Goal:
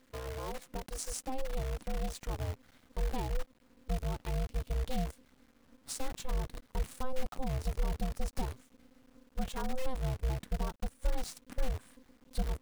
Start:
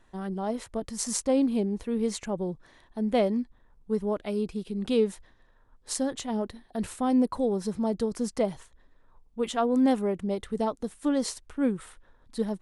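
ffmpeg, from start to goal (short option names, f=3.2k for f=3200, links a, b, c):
-af "aeval=exprs='val(0)*sin(2*PI*260*n/s)':c=same,equalizer=f=210:t=o:w=0.34:g=2.5,acompressor=threshold=-40dB:ratio=2.5,asubboost=boost=4.5:cutoff=150,acrusher=bits=8:dc=4:mix=0:aa=0.000001"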